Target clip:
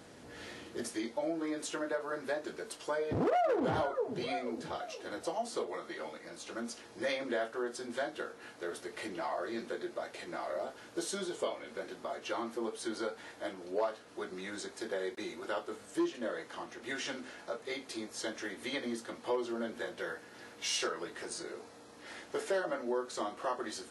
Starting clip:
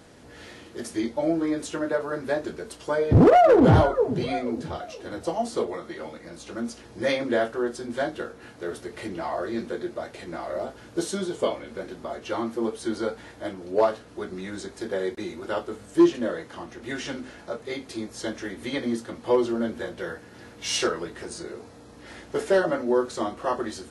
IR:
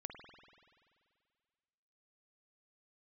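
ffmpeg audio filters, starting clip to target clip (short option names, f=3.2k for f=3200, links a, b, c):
-af "asetnsamples=n=441:p=0,asendcmd='0.89 highpass f 510',highpass=f=110:p=1,acompressor=threshold=-32dB:ratio=2,volume=-2.5dB"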